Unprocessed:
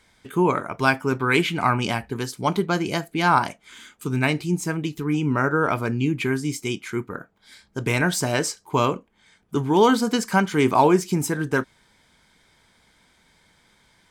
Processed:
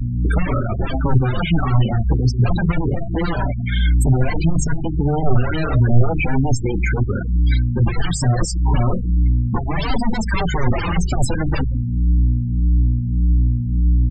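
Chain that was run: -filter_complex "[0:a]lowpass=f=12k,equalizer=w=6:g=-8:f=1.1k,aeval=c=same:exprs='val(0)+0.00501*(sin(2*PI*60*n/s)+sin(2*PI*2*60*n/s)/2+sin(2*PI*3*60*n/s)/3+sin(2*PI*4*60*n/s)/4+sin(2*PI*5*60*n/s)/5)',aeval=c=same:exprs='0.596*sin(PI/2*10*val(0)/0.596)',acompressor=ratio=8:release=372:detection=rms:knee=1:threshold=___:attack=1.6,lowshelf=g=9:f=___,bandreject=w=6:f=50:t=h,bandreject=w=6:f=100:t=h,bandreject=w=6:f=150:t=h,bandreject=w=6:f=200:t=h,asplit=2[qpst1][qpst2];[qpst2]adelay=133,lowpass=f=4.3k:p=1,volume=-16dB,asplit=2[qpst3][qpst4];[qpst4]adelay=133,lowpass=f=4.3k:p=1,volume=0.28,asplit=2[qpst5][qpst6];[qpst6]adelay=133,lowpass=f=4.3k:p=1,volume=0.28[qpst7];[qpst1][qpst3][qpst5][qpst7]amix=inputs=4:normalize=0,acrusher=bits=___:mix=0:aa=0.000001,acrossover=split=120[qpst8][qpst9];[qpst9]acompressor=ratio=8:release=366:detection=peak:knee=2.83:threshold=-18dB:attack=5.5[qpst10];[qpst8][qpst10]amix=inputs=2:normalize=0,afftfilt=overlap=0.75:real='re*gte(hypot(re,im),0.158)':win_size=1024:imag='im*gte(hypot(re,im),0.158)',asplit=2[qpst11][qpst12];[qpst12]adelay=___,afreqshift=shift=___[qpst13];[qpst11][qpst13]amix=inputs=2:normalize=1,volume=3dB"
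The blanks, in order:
-11dB, 150, 6, 4.9, -1.7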